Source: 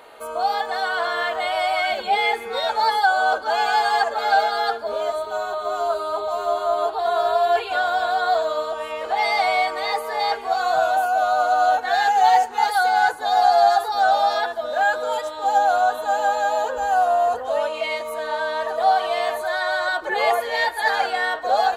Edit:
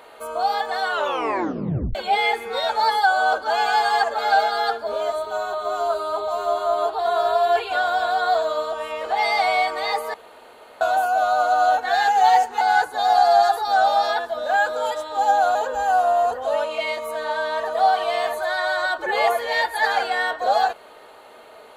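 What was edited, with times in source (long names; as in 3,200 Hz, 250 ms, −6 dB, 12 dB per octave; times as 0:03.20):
0:00.89: tape stop 1.06 s
0:10.14–0:10.81: fill with room tone
0:12.61–0:12.88: remove
0:15.82–0:16.58: remove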